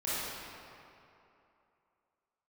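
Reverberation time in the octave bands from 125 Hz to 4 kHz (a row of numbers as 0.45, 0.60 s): 2.4, 2.6, 2.8, 2.9, 2.3, 1.7 s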